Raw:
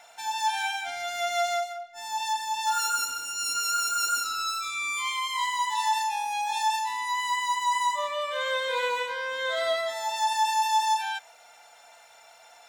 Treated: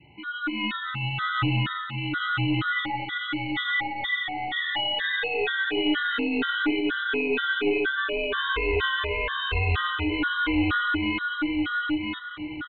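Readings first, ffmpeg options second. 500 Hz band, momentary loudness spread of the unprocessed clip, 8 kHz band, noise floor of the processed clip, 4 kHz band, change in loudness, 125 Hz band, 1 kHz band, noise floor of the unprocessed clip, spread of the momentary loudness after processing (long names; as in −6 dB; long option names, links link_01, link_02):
+3.0 dB, 5 LU, below −40 dB, −36 dBFS, +2.0 dB, +1.5 dB, can't be measured, −5.5 dB, −54 dBFS, 5 LU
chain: -filter_complex "[0:a]asplit=2[link_01][link_02];[link_02]acompressor=threshold=-39dB:ratio=6,volume=-3dB[link_03];[link_01][link_03]amix=inputs=2:normalize=0,aeval=exprs='val(0)*sin(2*PI*570*n/s)':channel_layout=same,highpass=44,aecho=1:1:1008|2016|3024|4032:0.631|0.177|0.0495|0.0139,dynaudnorm=framelen=100:gausssize=13:maxgain=8.5dB,adynamicequalizer=threshold=0.0158:dfrequency=970:dqfactor=0.76:tfrequency=970:tqfactor=0.76:attack=5:release=100:ratio=0.375:range=2.5:mode=cutabove:tftype=bell,aeval=exprs='(tanh(6.31*val(0)+0.2)-tanh(0.2))/6.31':channel_layout=same,aresample=8000,aresample=44100,afftfilt=real='re*gt(sin(2*PI*2.1*pts/sr)*(1-2*mod(floor(b*sr/1024/1000),2)),0)':imag='im*gt(sin(2*PI*2.1*pts/sr)*(1-2*mod(floor(b*sr/1024/1000),2)),0)':win_size=1024:overlap=0.75,volume=2dB"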